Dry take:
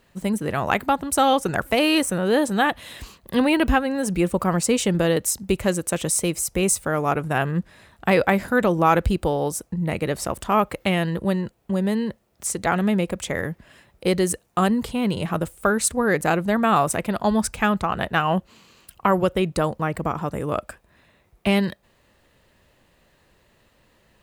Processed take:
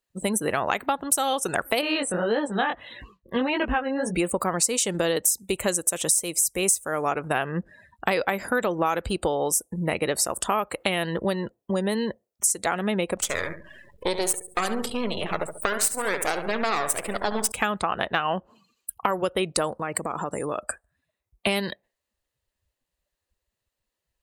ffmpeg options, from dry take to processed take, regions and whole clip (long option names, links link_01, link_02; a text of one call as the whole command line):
ffmpeg -i in.wav -filter_complex "[0:a]asettb=1/sr,asplit=3[link_01][link_02][link_03];[link_01]atrim=end=1.814[link_04];[link_02]atrim=start=1.81:end=4.15,asetpts=PTS-STARTPTS,afade=type=in:duration=0.004:curve=qsin,afade=type=out:start_time=2.336:duration=0.004:curve=qsin,bass=frequency=250:gain=1,treble=frequency=4000:gain=-12,flanger=delay=17:depth=5.6:speed=1.7[link_05];[link_03]atrim=start=4.146[link_06];[link_04][link_05]acrossfade=duration=0.004:curve1=hsin:curve2=qsin[link_07];[link_07][link_06]acrossfade=duration=0.004:curve1=qsin:curve2=hsin,asettb=1/sr,asplit=3[link_08][link_09][link_10];[link_08]atrim=end=13.174[link_11];[link_09]atrim=start=13.17:end=17.52,asetpts=PTS-STARTPTS,afade=type=in:duration=0.004:curve=qsin,afade=type=out:start_time=4.346:duration=0.004:curve=qsin,aeval=exprs='max(val(0),0)':channel_layout=same,acompressor=mode=upward:threshold=-35dB:ratio=2.5:attack=3.2:release=140:knee=2.83:detection=peak,aecho=1:1:70|140|210|280:0.316|0.126|0.0506|0.0202,atrim=end_sample=191835[link_12];[link_10]atrim=start=17.516[link_13];[link_11][link_12]acrossfade=duration=0.004:curve1=hsin:curve2=qsin[link_14];[link_14][link_13]acrossfade=duration=0.004:curve1=qsin:curve2=hsin,asettb=1/sr,asplit=3[link_15][link_16][link_17];[link_15]atrim=end=19.794[link_18];[link_16]atrim=start=19.79:end=20.63,asetpts=PTS-STARTPTS,afade=type=in:duration=0.004:curve=qsin,afade=type=out:start_time=0.836:duration=0.004:curve=qsin,highpass=80,equalizer=frequency=7900:width=0.46:gain=7,acompressor=threshold=-27dB:ratio=10:attack=3.2:release=140:knee=1:detection=peak[link_19];[link_17]atrim=start=20.626[link_20];[link_18][link_19]acrossfade=duration=0.004:curve1=hsin:curve2=qsin[link_21];[link_21][link_20]acrossfade=duration=0.004:curve1=qsin:curve2=hsin,afftdn=noise_reduction=32:noise_floor=-44,bass=frequency=250:gain=-11,treble=frequency=4000:gain=11,acompressor=threshold=-27dB:ratio=5,volume=5.5dB" out.wav